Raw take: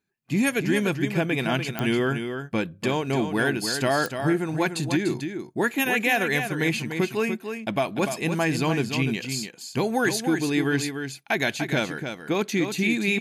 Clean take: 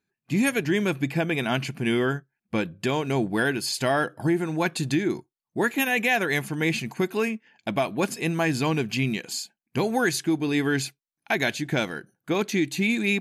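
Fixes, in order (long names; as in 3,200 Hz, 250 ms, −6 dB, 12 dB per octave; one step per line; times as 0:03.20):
click removal
echo removal 294 ms −7.5 dB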